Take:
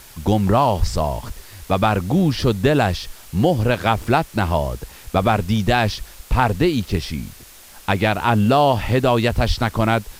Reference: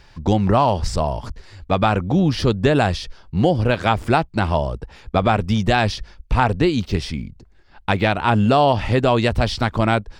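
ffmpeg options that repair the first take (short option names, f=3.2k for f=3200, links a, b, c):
-filter_complex "[0:a]adeclick=t=4,asplit=3[a][b][c];[a]afade=t=out:st=0.79:d=0.02[d];[b]highpass=f=140:w=0.5412,highpass=f=140:w=1.3066,afade=t=in:st=0.79:d=0.02,afade=t=out:st=0.91:d=0.02[e];[c]afade=t=in:st=0.91:d=0.02[f];[d][e][f]amix=inputs=3:normalize=0,asplit=3[g][h][i];[g]afade=t=out:st=9.47:d=0.02[j];[h]highpass=f=140:w=0.5412,highpass=f=140:w=1.3066,afade=t=in:st=9.47:d=0.02,afade=t=out:st=9.59:d=0.02[k];[i]afade=t=in:st=9.59:d=0.02[l];[j][k][l]amix=inputs=3:normalize=0,afwtdn=0.0071"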